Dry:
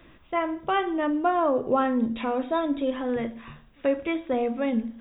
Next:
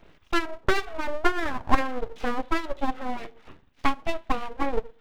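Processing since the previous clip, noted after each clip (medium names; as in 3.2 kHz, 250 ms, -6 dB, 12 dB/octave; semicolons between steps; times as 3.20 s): transient shaper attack +11 dB, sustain -6 dB; harmonic tremolo 1.7 Hz, depth 50%, crossover 1 kHz; full-wave rectifier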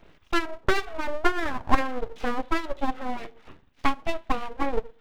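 no audible change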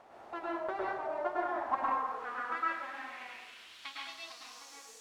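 added noise pink -40 dBFS; band-pass sweep 750 Hz -> 6.6 kHz, 1.39–4.81 s; plate-style reverb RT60 1 s, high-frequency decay 0.55×, pre-delay 95 ms, DRR -5 dB; trim -7 dB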